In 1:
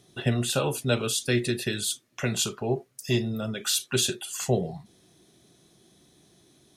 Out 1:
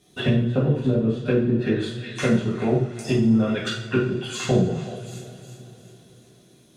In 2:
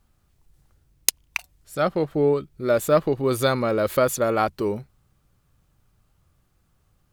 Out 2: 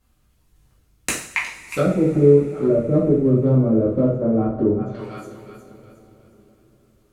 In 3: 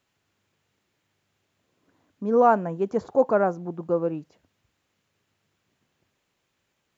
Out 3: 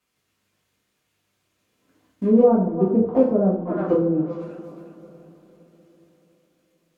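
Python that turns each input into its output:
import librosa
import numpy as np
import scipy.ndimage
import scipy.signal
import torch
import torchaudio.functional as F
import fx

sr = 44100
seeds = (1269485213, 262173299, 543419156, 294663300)

p1 = fx.law_mismatch(x, sr, coded='A')
p2 = p1 + fx.echo_thinned(p1, sr, ms=362, feedback_pct=39, hz=640.0, wet_db=-15.5, dry=0)
p3 = fx.env_lowpass_down(p2, sr, base_hz=300.0, full_db=-22.0)
p4 = np.clip(p3, -10.0 ** (-19.5 / 20.0), 10.0 ** (-19.5 / 20.0))
p5 = p3 + (p4 * 10.0 ** (-5.5 / 20.0))
p6 = fx.peak_eq(p5, sr, hz=140.0, db=3.5, octaves=0.29)
p7 = fx.notch(p6, sr, hz=830.0, q=12.0)
y = fx.rev_double_slope(p7, sr, seeds[0], early_s=0.5, late_s=4.6, knee_db=-22, drr_db=-6.5)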